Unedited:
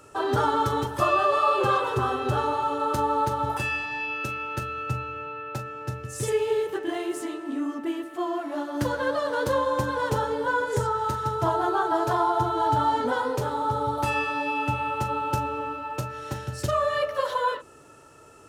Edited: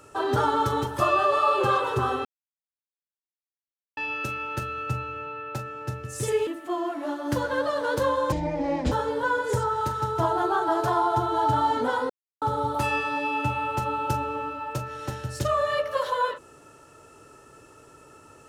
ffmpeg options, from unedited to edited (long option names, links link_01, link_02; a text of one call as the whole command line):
ffmpeg -i in.wav -filter_complex "[0:a]asplit=8[link_01][link_02][link_03][link_04][link_05][link_06][link_07][link_08];[link_01]atrim=end=2.25,asetpts=PTS-STARTPTS,afade=type=out:start_time=2.246:duration=0.004:curve=hsin[link_09];[link_02]atrim=start=2.25:end=3.97,asetpts=PTS-STARTPTS,volume=0[link_10];[link_03]atrim=start=3.97:end=6.472,asetpts=PTS-STARTPTS,afade=type=in:duration=0.004:curve=hsin[link_11];[link_04]atrim=start=7.958:end=9.814[link_12];[link_05]atrim=start=9.81:end=10.15,asetpts=PTS-STARTPTS,asetrate=25137,aresample=44100,atrim=end_sample=26305,asetpts=PTS-STARTPTS[link_13];[link_06]atrim=start=10.146:end=13.33,asetpts=PTS-STARTPTS,afade=type=out:start_time=3.18:duration=0.004:curve=hsin[link_14];[link_07]atrim=start=13.33:end=13.65,asetpts=PTS-STARTPTS,volume=0[link_15];[link_08]atrim=start=13.65,asetpts=PTS-STARTPTS,afade=type=in:duration=0.004:curve=hsin[link_16];[link_09][link_10][link_11]concat=n=3:v=0:a=1[link_17];[link_17][link_12]acrossfade=duration=0.004:curve1=hsin:curve2=hsin[link_18];[link_18][link_13]acrossfade=duration=0.004:curve1=hsin:curve2=hsin[link_19];[link_14][link_15][link_16]concat=n=3:v=0:a=1[link_20];[link_19][link_20]acrossfade=duration=0.004:curve1=hsin:curve2=hsin" out.wav